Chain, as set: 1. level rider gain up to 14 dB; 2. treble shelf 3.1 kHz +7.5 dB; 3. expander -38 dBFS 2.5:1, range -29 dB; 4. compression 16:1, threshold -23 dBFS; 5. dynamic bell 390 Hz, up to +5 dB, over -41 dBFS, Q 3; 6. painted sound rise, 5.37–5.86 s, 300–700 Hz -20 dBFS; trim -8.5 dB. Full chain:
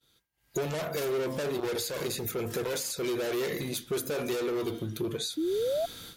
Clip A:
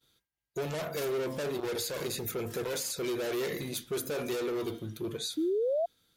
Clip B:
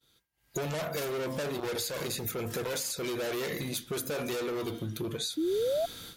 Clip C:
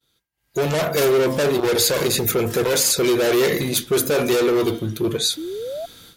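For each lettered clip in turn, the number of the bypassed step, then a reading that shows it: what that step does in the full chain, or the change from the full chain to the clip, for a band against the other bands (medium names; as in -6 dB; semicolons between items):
1, loudness change -2.0 LU; 5, 500 Hz band -2.0 dB; 4, mean gain reduction 11.0 dB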